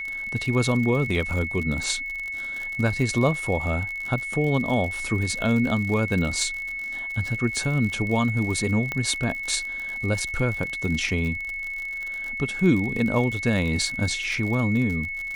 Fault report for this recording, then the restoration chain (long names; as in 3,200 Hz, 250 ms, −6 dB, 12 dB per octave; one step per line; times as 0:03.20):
surface crackle 57 per second −29 dBFS
whistle 2,200 Hz −29 dBFS
0:08.92: click −14 dBFS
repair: click removal
notch filter 2,200 Hz, Q 30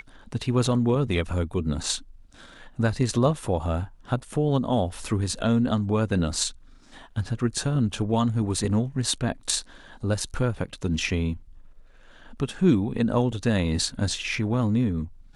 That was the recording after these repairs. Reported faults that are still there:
none of them is left